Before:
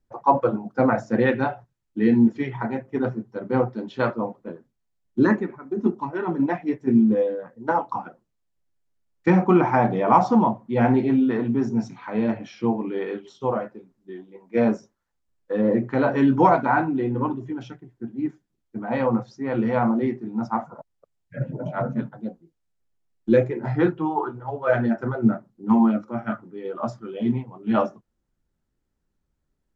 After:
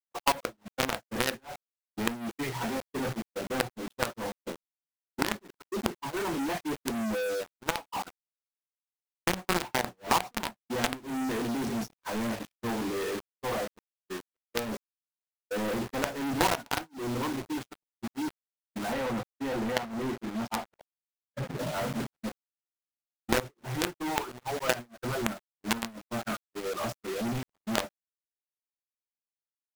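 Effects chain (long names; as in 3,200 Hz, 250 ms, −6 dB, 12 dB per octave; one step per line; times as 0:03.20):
low-shelf EQ 260 Hz −7 dB
log-companded quantiser 2 bits
0:18.93–0:21.58: high-shelf EQ 4,600 Hz −7.5 dB
downward compressor 3 to 1, threshold −22 dBFS, peak gain reduction 14 dB
noise gate −28 dBFS, range −57 dB
level −3.5 dB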